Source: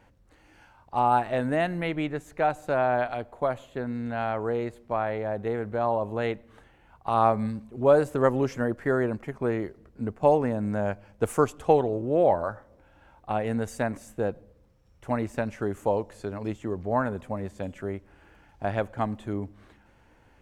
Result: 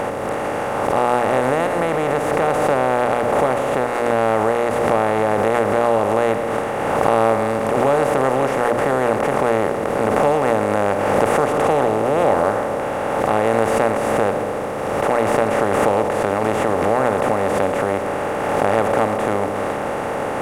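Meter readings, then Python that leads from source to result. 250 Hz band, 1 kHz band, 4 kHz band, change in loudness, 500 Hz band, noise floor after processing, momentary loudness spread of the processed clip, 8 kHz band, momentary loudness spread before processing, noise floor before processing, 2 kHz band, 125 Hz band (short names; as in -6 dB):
+7.0 dB, +10.5 dB, n/a, +9.0 dB, +10.0 dB, -23 dBFS, 5 LU, +15.5 dB, 12 LU, -59 dBFS, +12.0 dB, +5.0 dB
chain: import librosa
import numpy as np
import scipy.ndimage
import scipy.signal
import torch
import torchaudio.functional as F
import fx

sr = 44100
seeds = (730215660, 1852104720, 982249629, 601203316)

y = fx.bin_compress(x, sr, power=0.2)
y = fx.hum_notches(y, sr, base_hz=60, count=10)
y = fx.pre_swell(y, sr, db_per_s=24.0)
y = y * librosa.db_to_amplitude(-2.5)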